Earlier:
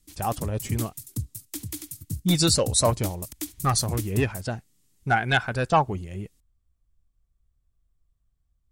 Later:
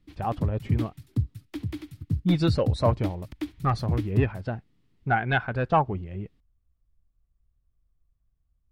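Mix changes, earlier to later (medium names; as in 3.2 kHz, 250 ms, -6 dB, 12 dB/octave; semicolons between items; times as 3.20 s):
background +5.5 dB; master: add distance through air 380 m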